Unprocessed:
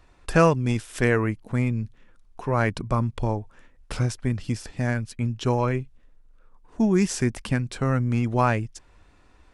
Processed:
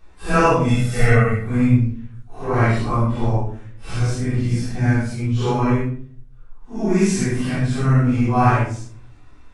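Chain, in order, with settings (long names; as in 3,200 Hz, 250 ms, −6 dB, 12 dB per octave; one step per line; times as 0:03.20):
random phases in long frames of 200 ms
0:00.68–0:01.44: comb filter 1.5 ms, depth 87%
convolution reverb RT60 0.50 s, pre-delay 3 ms, DRR −4 dB
level −1 dB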